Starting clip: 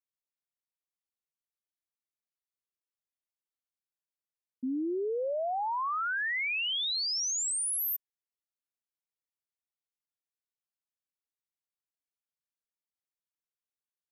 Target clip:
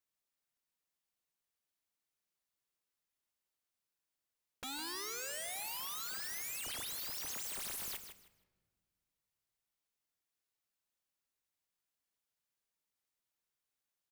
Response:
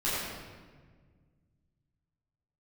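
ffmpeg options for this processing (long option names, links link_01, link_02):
-filter_complex "[0:a]aeval=exprs='(mod(126*val(0)+1,2)-1)/126':channel_layout=same,aecho=1:1:157|314|471:0.335|0.0737|0.0162,asplit=2[link_01][link_02];[1:a]atrim=start_sample=2205[link_03];[link_02][link_03]afir=irnorm=-1:irlink=0,volume=-26.5dB[link_04];[link_01][link_04]amix=inputs=2:normalize=0,volume=4dB"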